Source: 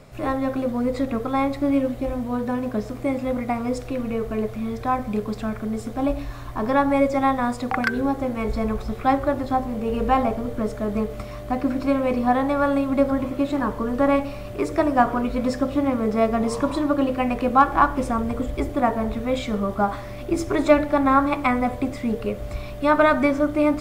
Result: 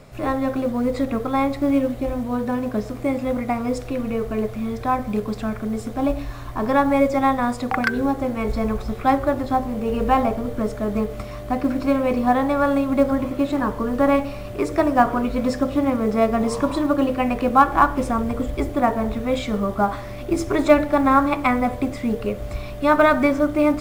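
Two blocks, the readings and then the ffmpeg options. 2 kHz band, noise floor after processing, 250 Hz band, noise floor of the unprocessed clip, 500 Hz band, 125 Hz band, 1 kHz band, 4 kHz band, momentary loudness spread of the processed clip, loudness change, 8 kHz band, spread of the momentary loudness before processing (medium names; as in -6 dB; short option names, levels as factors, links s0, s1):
+1.5 dB, -33 dBFS, +1.5 dB, -35 dBFS, +1.5 dB, +1.5 dB, +1.5 dB, +1.5 dB, 9 LU, +1.5 dB, no reading, 9 LU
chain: -af "acrusher=bits=9:mode=log:mix=0:aa=0.000001,volume=1.19"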